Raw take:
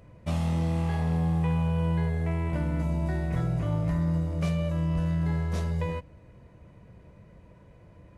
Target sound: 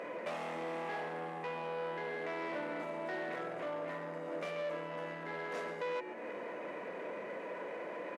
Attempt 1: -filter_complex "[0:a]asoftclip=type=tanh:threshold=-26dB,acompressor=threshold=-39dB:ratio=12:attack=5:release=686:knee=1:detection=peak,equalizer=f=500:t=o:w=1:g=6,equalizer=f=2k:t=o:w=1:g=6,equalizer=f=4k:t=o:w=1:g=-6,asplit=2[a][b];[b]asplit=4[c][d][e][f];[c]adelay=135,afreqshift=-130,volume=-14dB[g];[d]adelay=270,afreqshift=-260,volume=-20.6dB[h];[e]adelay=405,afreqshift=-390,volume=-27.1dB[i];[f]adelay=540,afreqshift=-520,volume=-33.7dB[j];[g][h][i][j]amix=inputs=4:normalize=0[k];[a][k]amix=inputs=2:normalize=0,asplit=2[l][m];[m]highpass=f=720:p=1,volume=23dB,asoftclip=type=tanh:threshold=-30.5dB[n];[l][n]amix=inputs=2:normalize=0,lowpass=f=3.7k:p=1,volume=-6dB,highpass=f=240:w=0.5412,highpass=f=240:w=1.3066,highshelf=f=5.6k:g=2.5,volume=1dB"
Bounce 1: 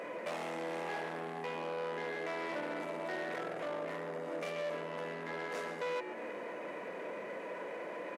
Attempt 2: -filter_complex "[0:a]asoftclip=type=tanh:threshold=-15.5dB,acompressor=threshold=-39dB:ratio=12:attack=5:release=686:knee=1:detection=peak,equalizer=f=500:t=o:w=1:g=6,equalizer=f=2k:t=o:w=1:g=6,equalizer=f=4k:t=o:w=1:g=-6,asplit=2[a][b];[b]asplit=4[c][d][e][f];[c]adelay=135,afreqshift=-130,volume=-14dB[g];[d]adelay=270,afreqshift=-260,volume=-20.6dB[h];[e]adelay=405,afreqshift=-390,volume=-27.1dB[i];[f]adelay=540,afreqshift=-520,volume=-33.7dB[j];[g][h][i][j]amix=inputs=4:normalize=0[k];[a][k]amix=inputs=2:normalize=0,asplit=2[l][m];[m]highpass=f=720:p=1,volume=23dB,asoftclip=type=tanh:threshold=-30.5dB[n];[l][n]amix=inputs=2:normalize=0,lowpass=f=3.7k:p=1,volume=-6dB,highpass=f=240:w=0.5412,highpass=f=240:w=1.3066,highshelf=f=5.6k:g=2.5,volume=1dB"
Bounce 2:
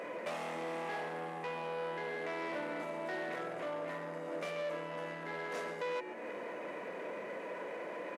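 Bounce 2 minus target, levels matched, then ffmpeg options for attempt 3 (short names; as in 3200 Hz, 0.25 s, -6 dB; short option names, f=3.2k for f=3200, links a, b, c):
8000 Hz band +4.5 dB
-filter_complex "[0:a]asoftclip=type=tanh:threshold=-15.5dB,acompressor=threshold=-39dB:ratio=12:attack=5:release=686:knee=1:detection=peak,equalizer=f=500:t=o:w=1:g=6,equalizer=f=2k:t=o:w=1:g=6,equalizer=f=4k:t=o:w=1:g=-6,asplit=2[a][b];[b]asplit=4[c][d][e][f];[c]adelay=135,afreqshift=-130,volume=-14dB[g];[d]adelay=270,afreqshift=-260,volume=-20.6dB[h];[e]adelay=405,afreqshift=-390,volume=-27.1dB[i];[f]adelay=540,afreqshift=-520,volume=-33.7dB[j];[g][h][i][j]amix=inputs=4:normalize=0[k];[a][k]amix=inputs=2:normalize=0,asplit=2[l][m];[m]highpass=f=720:p=1,volume=23dB,asoftclip=type=tanh:threshold=-30.5dB[n];[l][n]amix=inputs=2:normalize=0,lowpass=f=3.7k:p=1,volume=-6dB,highpass=f=240:w=0.5412,highpass=f=240:w=1.3066,highshelf=f=5.6k:g=-5,volume=1dB"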